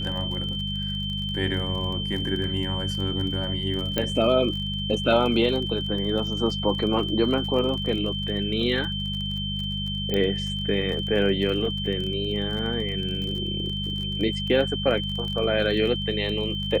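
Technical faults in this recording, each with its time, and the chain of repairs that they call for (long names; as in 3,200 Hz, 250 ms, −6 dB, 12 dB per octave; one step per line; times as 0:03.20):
surface crackle 33 per second −31 dBFS
mains hum 50 Hz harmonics 4 −31 dBFS
whistle 3,100 Hz −30 dBFS
0:03.98: click −10 dBFS
0:10.14: click −13 dBFS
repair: click removal
hum removal 50 Hz, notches 4
notch filter 3,100 Hz, Q 30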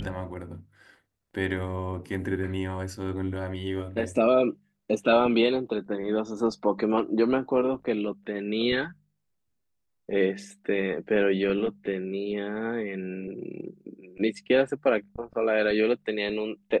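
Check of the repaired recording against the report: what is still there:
none of them is left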